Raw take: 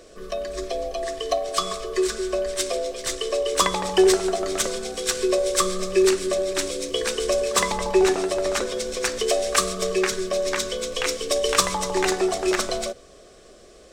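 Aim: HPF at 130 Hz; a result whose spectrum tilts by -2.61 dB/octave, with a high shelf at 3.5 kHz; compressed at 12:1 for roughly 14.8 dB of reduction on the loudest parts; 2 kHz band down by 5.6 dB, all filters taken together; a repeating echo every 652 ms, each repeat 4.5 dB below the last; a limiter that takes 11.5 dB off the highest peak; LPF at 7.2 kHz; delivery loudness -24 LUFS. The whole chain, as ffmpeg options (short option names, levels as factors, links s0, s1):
-af "highpass=130,lowpass=7200,equalizer=f=2000:t=o:g=-8.5,highshelf=f=3500:g=4,acompressor=threshold=0.0398:ratio=12,alimiter=level_in=1.41:limit=0.0631:level=0:latency=1,volume=0.708,aecho=1:1:652|1304|1956|2608|3260|3912|4564|5216|5868:0.596|0.357|0.214|0.129|0.0772|0.0463|0.0278|0.0167|0.01,volume=2.99"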